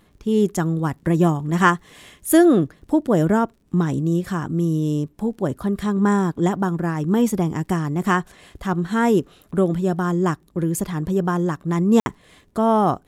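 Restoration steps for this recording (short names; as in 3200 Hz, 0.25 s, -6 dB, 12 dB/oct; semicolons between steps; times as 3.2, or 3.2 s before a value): de-click; room tone fill 12–12.06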